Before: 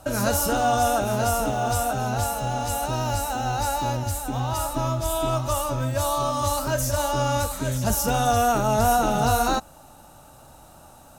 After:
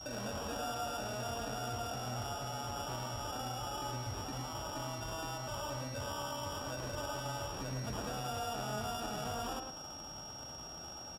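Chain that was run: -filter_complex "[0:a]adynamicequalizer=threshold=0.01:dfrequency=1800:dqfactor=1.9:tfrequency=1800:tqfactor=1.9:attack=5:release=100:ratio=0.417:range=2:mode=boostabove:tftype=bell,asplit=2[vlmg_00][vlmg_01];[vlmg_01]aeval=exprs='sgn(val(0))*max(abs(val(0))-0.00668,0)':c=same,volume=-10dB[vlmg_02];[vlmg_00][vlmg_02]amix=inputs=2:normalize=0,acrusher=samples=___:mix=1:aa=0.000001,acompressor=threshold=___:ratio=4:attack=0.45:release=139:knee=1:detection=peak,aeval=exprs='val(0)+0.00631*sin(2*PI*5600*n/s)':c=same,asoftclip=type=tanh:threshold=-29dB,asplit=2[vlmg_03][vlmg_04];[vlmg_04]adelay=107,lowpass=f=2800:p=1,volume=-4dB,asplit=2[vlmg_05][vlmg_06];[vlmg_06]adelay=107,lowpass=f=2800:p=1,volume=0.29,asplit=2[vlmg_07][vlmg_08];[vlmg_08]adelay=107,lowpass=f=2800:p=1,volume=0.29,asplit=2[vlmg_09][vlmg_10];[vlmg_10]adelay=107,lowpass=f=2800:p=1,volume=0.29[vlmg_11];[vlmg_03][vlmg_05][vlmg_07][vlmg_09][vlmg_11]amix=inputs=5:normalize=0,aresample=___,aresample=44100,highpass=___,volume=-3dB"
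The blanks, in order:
21, -36dB, 32000, 43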